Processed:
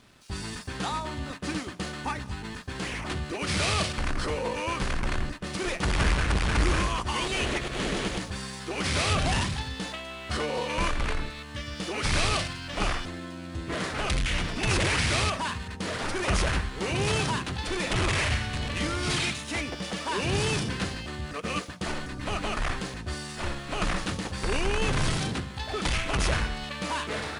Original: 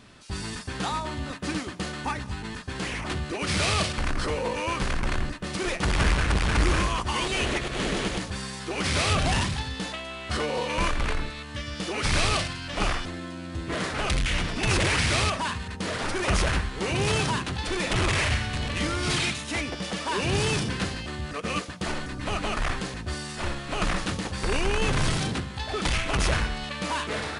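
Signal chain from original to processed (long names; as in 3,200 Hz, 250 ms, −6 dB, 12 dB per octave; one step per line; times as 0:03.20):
dead-zone distortion −57.5 dBFS
level −1.5 dB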